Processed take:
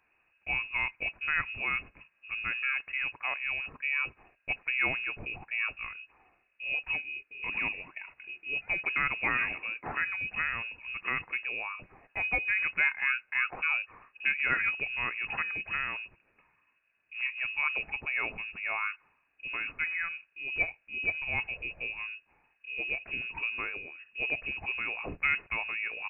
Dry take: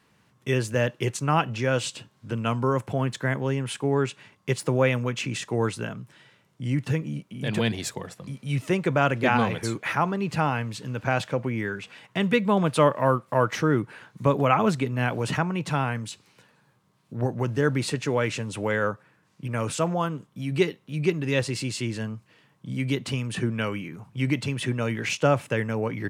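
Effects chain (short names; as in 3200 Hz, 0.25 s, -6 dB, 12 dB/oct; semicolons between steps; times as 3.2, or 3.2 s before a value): inverted band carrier 2700 Hz; gain -8 dB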